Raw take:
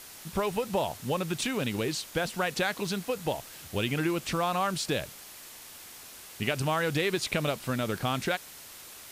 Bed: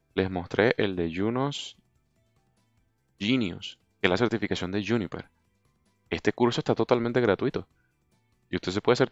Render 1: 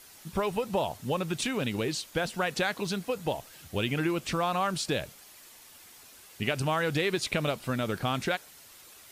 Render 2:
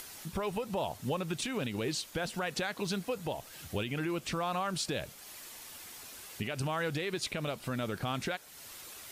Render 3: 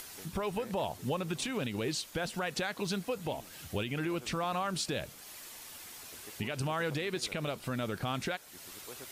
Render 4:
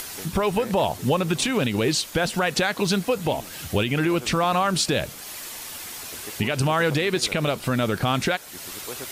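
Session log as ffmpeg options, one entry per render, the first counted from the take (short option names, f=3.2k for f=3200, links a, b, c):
-af "afftdn=nr=7:nf=-48"
-af "alimiter=limit=-23.5dB:level=0:latency=1:release=196,acompressor=mode=upward:threshold=-41dB:ratio=2.5"
-filter_complex "[1:a]volume=-28.5dB[a];[0:a][a]amix=inputs=2:normalize=0"
-af "volume=12dB"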